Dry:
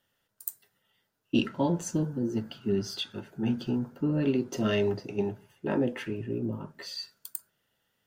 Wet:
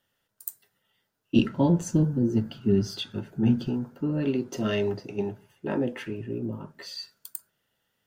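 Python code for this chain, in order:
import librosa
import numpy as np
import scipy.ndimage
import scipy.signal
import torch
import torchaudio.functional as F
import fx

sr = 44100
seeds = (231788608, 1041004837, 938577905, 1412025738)

y = fx.low_shelf(x, sr, hz=280.0, db=10.5, at=(1.36, 3.69))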